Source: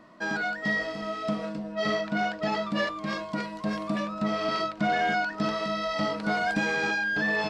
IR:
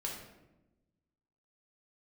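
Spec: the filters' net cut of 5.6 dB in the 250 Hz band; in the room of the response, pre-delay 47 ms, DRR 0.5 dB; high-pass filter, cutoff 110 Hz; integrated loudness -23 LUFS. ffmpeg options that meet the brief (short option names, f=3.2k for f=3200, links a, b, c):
-filter_complex "[0:a]highpass=110,equalizer=f=250:t=o:g=-7,asplit=2[a][b];[1:a]atrim=start_sample=2205,adelay=47[c];[b][c]afir=irnorm=-1:irlink=0,volume=-1.5dB[d];[a][d]amix=inputs=2:normalize=0,volume=3dB"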